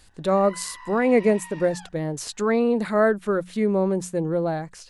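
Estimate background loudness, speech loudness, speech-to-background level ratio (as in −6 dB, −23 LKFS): −43.0 LKFS, −23.0 LKFS, 20.0 dB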